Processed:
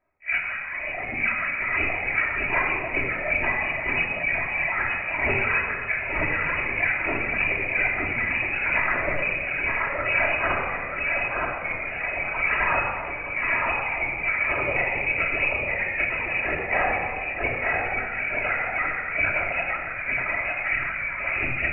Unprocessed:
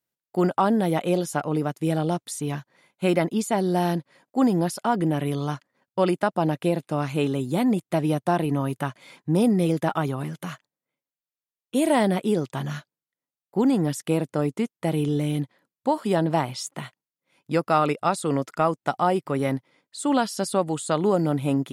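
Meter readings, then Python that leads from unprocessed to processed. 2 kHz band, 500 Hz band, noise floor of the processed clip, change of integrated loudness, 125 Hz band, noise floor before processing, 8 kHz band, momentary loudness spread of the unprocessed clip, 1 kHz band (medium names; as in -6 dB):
+16.5 dB, -6.5 dB, -32 dBFS, +1.0 dB, -11.0 dB, under -85 dBFS, under -40 dB, 10 LU, -2.0 dB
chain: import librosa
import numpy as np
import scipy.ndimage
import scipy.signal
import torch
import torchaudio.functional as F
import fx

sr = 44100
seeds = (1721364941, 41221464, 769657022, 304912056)

y = fx.phase_scramble(x, sr, seeds[0], window_ms=200)
y = fx.highpass(y, sr, hz=470.0, slope=6)
y = fx.peak_eq(y, sr, hz=2100.0, db=11.0, octaves=0.37)
y = fx.over_compress(y, sr, threshold_db=-36.0, ratio=-1.0)
y = fx.echo_feedback(y, sr, ms=919, feedback_pct=53, wet_db=-3.0)
y = fx.freq_invert(y, sr, carrier_hz=2700)
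y = fx.lpc_vocoder(y, sr, seeds[1], excitation='whisper', order=16)
y = fx.dereverb_blind(y, sr, rt60_s=1.6)
y = fx.room_shoebox(y, sr, seeds[2], volume_m3=3500.0, walls='mixed', distance_m=2.9)
y = y * 10.0 ** (6.0 / 20.0)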